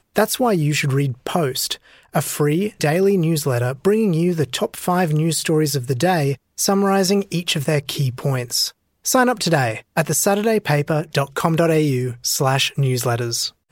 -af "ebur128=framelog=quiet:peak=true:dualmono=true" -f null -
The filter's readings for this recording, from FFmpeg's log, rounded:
Integrated loudness:
  I:         -16.2 LUFS
  Threshold: -26.2 LUFS
Loudness range:
  LRA:         1.1 LU
  Threshold: -36.1 LUFS
  LRA low:   -16.7 LUFS
  LRA high:  -15.6 LUFS
True peak:
  Peak:       -1.4 dBFS